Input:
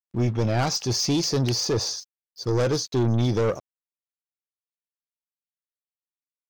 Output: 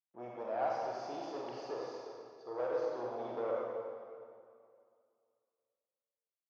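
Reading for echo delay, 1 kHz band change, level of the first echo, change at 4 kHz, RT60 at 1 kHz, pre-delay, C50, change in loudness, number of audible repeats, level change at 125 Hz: no echo, -6.0 dB, no echo, -29.0 dB, 2.3 s, 34 ms, -2.0 dB, -15.5 dB, no echo, -36.0 dB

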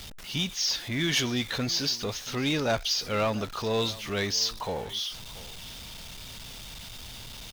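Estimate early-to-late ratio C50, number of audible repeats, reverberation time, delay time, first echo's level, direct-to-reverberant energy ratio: no reverb, 1, no reverb, 684 ms, -19.5 dB, no reverb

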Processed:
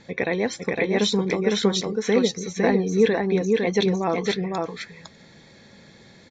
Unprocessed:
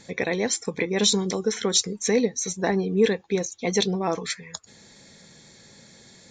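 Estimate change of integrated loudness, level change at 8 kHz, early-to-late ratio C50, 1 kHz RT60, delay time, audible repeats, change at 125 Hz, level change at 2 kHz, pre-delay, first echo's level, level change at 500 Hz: +1.5 dB, -8.5 dB, no reverb, no reverb, 507 ms, 1, +3.5 dB, +3.0 dB, no reverb, -3.0 dB, +3.0 dB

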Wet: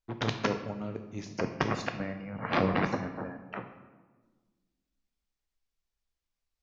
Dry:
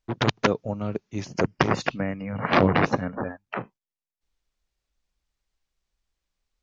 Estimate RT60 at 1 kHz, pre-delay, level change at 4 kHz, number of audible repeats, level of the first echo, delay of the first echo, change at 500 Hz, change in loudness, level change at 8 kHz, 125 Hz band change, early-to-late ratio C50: 1.3 s, 4 ms, -7.5 dB, no echo, no echo, no echo, -7.5 dB, -7.5 dB, no reading, -7.5 dB, 8.5 dB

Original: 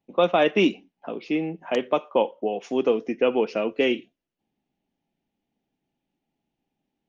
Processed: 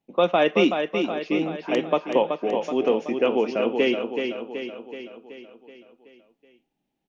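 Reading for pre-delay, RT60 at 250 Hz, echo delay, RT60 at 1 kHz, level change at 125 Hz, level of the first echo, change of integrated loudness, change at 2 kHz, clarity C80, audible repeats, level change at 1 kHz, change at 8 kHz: no reverb, no reverb, 377 ms, no reverb, +0.5 dB, -6.0 dB, +0.5 dB, +1.5 dB, no reverb, 6, +1.5 dB, no reading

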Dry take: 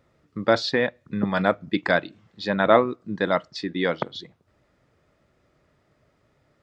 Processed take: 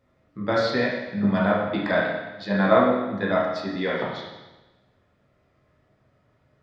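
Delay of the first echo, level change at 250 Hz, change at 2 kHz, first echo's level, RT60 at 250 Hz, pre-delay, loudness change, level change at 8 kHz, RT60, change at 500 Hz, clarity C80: no echo, +2.0 dB, -0.5 dB, no echo, 1.1 s, 9 ms, 0.0 dB, no reading, 1.1 s, 0.0 dB, 3.5 dB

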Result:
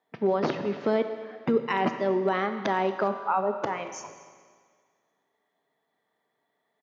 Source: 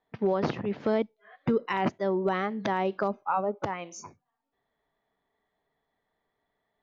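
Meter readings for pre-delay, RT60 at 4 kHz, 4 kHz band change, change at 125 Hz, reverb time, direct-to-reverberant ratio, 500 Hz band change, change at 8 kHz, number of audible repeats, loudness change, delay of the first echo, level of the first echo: 25 ms, 1.7 s, +2.5 dB, -1.5 dB, 1.8 s, 7.5 dB, +2.5 dB, no reading, 1, +2.0 dB, 231 ms, -20.5 dB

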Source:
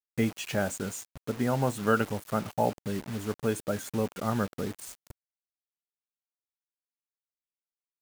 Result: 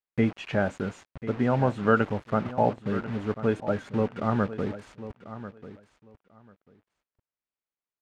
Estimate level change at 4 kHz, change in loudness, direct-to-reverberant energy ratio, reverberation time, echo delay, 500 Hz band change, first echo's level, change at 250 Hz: -3.5 dB, +3.5 dB, no reverb, no reverb, 1042 ms, +3.5 dB, -14.0 dB, +3.5 dB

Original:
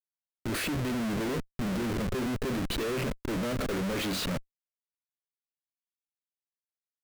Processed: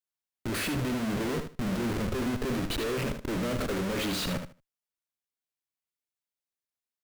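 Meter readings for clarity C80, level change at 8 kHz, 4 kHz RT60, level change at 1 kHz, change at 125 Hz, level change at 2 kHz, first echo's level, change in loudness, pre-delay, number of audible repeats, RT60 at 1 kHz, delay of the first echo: no reverb, +0.5 dB, no reverb, +0.5 dB, +0.5 dB, +0.5 dB, -8.0 dB, +0.5 dB, no reverb, 2, no reverb, 76 ms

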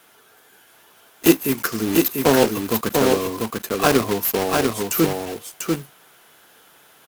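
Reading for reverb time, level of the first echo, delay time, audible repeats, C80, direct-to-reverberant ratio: no reverb, -3.5 dB, 694 ms, 1, no reverb, no reverb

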